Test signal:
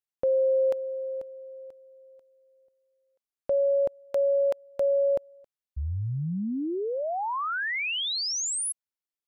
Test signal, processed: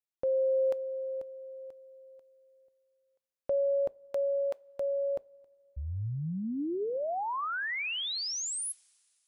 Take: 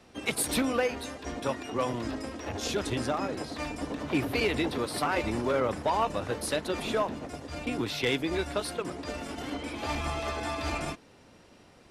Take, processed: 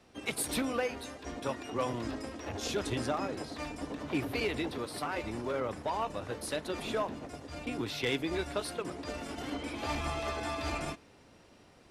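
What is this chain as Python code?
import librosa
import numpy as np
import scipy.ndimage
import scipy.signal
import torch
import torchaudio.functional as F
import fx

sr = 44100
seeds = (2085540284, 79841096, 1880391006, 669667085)

y = fx.rider(x, sr, range_db=4, speed_s=2.0)
y = fx.rev_double_slope(y, sr, seeds[0], early_s=0.22, late_s=2.6, knee_db=-20, drr_db=19.0)
y = y * 10.0 ** (-5.0 / 20.0)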